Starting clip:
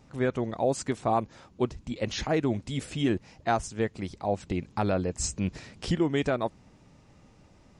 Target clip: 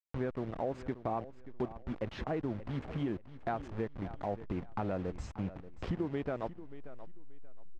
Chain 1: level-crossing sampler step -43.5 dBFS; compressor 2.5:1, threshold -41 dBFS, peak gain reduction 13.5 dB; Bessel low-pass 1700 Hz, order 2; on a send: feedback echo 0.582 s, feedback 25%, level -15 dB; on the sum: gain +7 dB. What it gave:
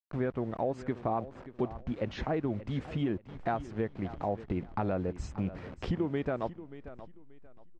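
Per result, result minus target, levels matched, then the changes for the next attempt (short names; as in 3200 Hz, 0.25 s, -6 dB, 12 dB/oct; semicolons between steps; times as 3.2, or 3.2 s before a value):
level-crossing sampler: distortion -10 dB; compressor: peak gain reduction -3.5 dB
change: level-crossing sampler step -33.5 dBFS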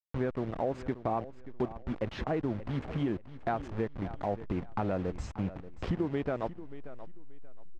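compressor: peak gain reduction -3.5 dB
change: compressor 2.5:1, threshold -47 dBFS, peak gain reduction 17 dB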